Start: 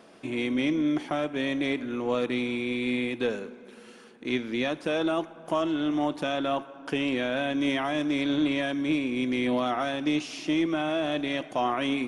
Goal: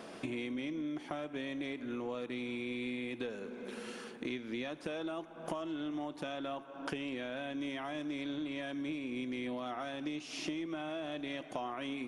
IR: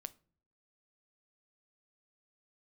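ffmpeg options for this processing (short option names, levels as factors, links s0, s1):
-af "acompressor=threshold=0.00891:ratio=10,volume=1.68"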